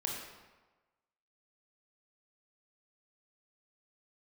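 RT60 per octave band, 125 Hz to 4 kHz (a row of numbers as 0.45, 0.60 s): 1.1, 1.1, 1.2, 1.3, 1.1, 0.85 s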